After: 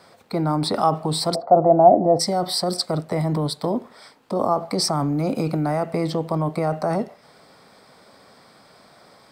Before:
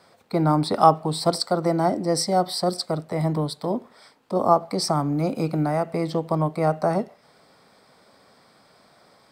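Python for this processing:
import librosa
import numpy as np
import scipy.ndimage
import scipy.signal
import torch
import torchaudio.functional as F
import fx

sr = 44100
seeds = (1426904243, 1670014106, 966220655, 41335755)

p1 = fx.over_compress(x, sr, threshold_db=-26.0, ratio=-1.0)
p2 = x + (p1 * 10.0 ** (2.5 / 20.0))
p3 = fx.lowpass_res(p2, sr, hz=710.0, q=5.6, at=(1.34, 2.19), fade=0.02)
y = p3 * 10.0 ** (-5.0 / 20.0)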